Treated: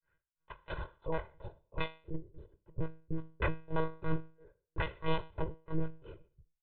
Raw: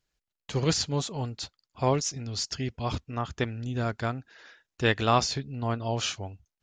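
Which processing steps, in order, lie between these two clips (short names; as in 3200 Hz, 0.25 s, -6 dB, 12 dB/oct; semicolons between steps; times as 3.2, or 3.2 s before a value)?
low-pass sweep 1600 Hz -> 360 Hz, 0.14–2.21; wavefolder -28 dBFS; grains 0.23 s, grains 3/s, spray 26 ms, pitch spread up and down by 0 st; resonator 58 Hz, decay 0.39 s, harmonics all, mix 60%; monotone LPC vocoder at 8 kHz 160 Hz; comb 2 ms, depth 94%; gain +6.5 dB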